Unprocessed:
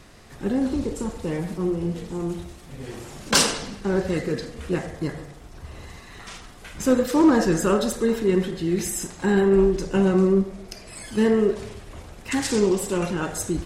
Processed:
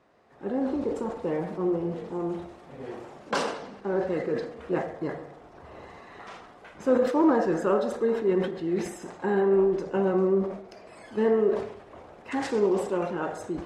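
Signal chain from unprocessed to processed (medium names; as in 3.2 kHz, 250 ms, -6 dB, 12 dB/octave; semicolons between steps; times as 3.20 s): level rider gain up to 11.5 dB; band-pass filter 670 Hz, Q 0.92; decay stretcher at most 87 dB/s; trim -8 dB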